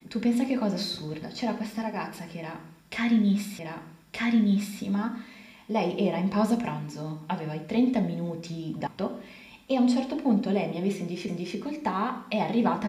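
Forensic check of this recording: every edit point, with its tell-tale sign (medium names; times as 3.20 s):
3.59 s: repeat of the last 1.22 s
8.87 s: sound stops dead
11.28 s: repeat of the last 0.29 s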